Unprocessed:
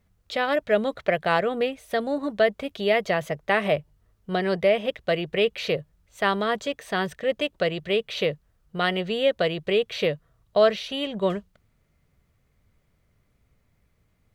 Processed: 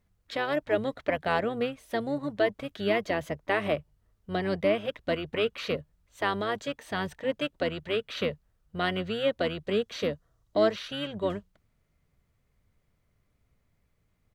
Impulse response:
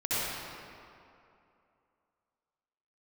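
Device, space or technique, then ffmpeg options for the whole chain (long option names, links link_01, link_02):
octave pedal: -filter_complex "[0:a]asettb=1/sr,asplit=3[link_01][link_02][link_03];[link_01]atrim=end=9.674[link_04];[link_02]atrim=start=9.67:end=10.76,asetpts=PTS-STARTPTS,afade=type=in:duration=0.004:curve=qsin,afade=type=out:start_time=1.086:duration=0.004:curve=qsin,equalizer=frequency=160:width_type=o:width=0.67:gain=-3,equalizer=frequency=2500:width_type=o:width=0.67:gain=-5,equalizer=frequency=6300:width_type=o:width=0.67:gain=5[link_05];[link_03]atrim=start=10.756[link_06];[link_04][link_05]acrossfade=duration=0.004:curve1=hsin:curve2=qsin[link_07];[link_07][link_06]acrossfade=duration=0.004:curve1=qsin:curve2=hsin,asplit=2[link_08][link_09];[link_09]asetrate=22050,aresample=44100,atempo=2,volume=-9dB[link_10];[link_08][link_10]amix=inputs=2:normalize=0,volume=-5.5dB"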